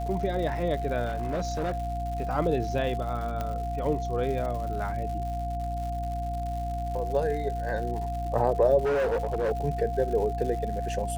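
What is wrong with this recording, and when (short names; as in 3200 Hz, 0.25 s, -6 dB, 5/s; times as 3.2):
crackle 180/s -36 dBFS
hum 60 Hz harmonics 5 -33 dBFS
tone 700 Hz -32 dBFS
1.05–1.92 clipped -25 dBFS
3.41 pop -18 dBFS
8.84–9.52 clipped -23 dBFS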